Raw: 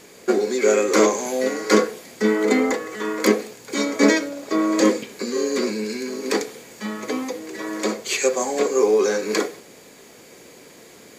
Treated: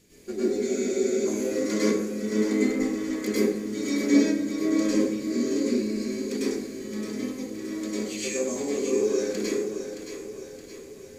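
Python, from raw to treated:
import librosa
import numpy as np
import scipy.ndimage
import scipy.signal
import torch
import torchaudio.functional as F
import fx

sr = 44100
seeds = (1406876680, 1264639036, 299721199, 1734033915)

y = fx.tone_stack(x, sr, knobs='10-0-1')
y = fx.echo_split(y, sr, split_hz=330.0, low_ms=280, high_ms=620, feedback_pct=52, wet_db=-8.5)
y = fx.rev_plate(y, sr, seeds[0], rt60_s=0.72, hf_ratio=0.5, predelay_ms=90, drr_db=-8.5)
y = fx.spec_freeze(y, sr, seeds[1], at_s=0.69, hold_s=0.57)
y = y * librosa.db_to_amplitude(6.5)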